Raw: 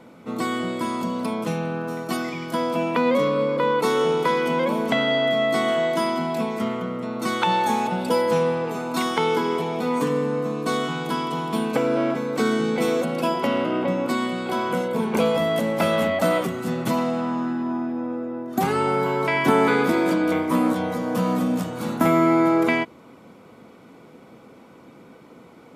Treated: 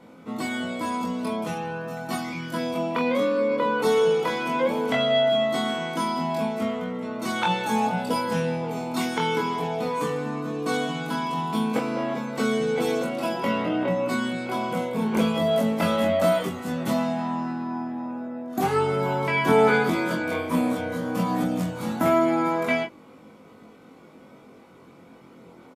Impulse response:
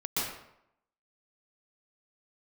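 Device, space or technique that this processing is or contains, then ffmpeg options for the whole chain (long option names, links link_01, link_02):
double-tracked vocal: -filter_complex "[0:a]asplit=2[link_01][link_02];[link_02]adelay=23,volume=-5.5dB[link_03];[link_01][link_03]amix=inputs=2:normalize=0,flanger=delay=19:depth=4.9:speed=0.17,asettb=1/sr,asplit=3[link_04][link_05][link_06];[link_04]atrim=end=2.744[link_07];[link_05]atrim=start=2.74:end=3.51,asetpts=PTS-STARTPTS,afade=type=in:duration=0.004:curve=qsin,afade=type=out:start_time=0.766:duration=0.004:curve=qsin,highpass=frequency=200:poles=1[link_08];[link_06]atrim=start=3.506[link_09];[link_07][link_08]acrossfade=duration=0.004:curve1=hsin:curve2=qsin[link_10];[link_10][link_09]acrossfade=duration=0.004:curve1=qsin:curve2=hsin"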